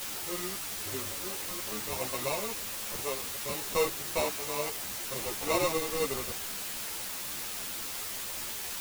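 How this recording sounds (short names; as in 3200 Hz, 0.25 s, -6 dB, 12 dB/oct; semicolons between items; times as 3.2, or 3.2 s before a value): aliases and images of a low sample rate 1600 Hz, jitter 0%; random-step tremolo, depth 90%; a quantiser's noise floor 6-bit, dither triangular; a shimmering, thickened sound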